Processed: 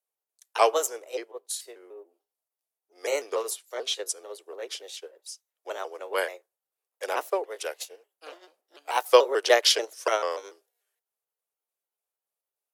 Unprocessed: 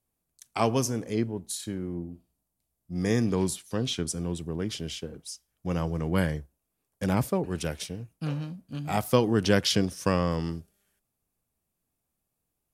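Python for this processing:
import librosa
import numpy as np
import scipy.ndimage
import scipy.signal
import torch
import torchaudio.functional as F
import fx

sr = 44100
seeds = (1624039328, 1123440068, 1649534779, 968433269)

y = fx.pitch_trill(x, sr, semitones=3.0, every_ms=146)
y = scipy.signal.sosfilt(scipy.signal.butter(8, 410.0, 'highpass', fs=sr, output='sos'), y)
y = fx.upward_expand(y, sr, threshold_db=-50.0, expansion=1.5)
y = F.gain(torch.from_numpy(y), 8.5).numpy()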